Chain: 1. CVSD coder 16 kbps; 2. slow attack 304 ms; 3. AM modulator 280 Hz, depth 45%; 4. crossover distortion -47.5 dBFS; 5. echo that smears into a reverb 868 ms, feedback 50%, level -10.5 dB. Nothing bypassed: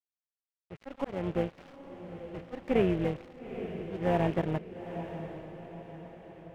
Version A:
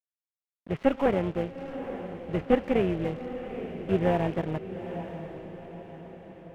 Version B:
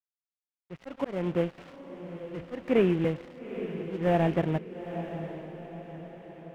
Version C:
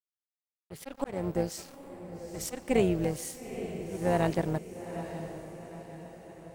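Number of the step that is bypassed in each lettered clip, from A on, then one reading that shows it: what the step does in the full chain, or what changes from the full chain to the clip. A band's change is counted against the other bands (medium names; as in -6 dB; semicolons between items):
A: 2, crest factor change +2.0 dB; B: 3, crest factor change -2.5 dB; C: 1, 4 kHz band +3.0 dB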